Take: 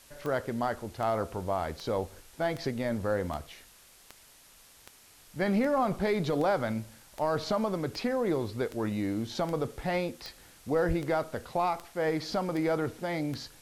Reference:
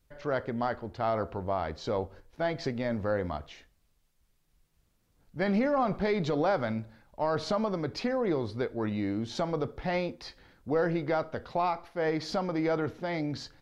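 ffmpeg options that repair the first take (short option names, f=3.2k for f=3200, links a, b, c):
-filter_complex "[0:a]adeclick=t=4,asplit=3[a][b][c];[a]afade=t=out:st=10.87:d=0.02[d];[b]highpass=f=140:w=0.5412,highpass=f=140:w=1.3066,afade=t=in:st=10.87:d=0.02,afade=t=out:st=10.99:d=0.02[e];[c]afade=t=in:st=10.99:d=0.02[f];[d][e][f]amix=inputs=3:normalize=0,afftdn=nr=11:nf=-57"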